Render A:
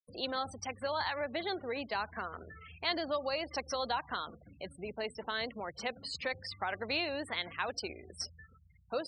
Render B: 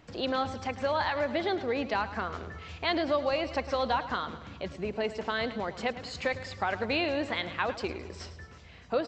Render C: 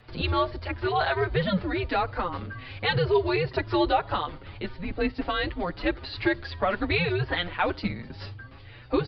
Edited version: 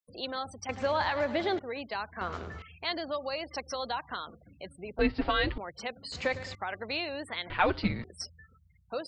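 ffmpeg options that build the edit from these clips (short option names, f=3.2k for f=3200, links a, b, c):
-filter_complex "[1:a]asplit=3[a][b][c];[2:a]asplit=2[d][e];[0:a]asplit=6[f][g][h][i][j][k];[f]atrim=end=0.692[l];[a]atrim=start=0.688:end=1.592[m];[g]atrim=start=1.588:end=2.212[n];[b]atrim=start=2.208:end=2.622[o];[h]atrim=start=2.618:end=4.992[p];[d]atrim=start=4.988:end=5.582[q];[i]atrim=start=5.578:end=6.122[r];[c]atrim=start=6.118:end=6.552[s];[j]atrim=start=6.548:end=7.502[t];[e]atrim=start=7.498:end=8.042[u];[k]atrim=start=8.038[v];[l][m]acrossfade=d=0.004:c1=hsin:c2=hsin[w];[w][n]acrossfade=d=0.004:c1=hsin:c2=hsin[x];[x][o]acrossfade=d=0.004:c1=hsin:c2=hsin[y];[y][p]acrossfade=d=0.004:c1=hsin:c2=hsin[z];[z][q]acrossfade=d=0.004:c1=hsin:c2=hsin[aa];[aa][r]acrossfade=d=0.004:c1=hsin:c2=hsin[ab];[ab][s]acrossfade=d=0.004:c1=hsin:c2=hsin[ac];[ac][t]acrossfade=d=0.004:c1=hsin:c2=hsin[ad];[ad][u]acrossfade=d=0.004:c1=hsin:c2=hsin[ae];[ae][v]acrossfade=d=0.004:c1=hsin:c2=hsin"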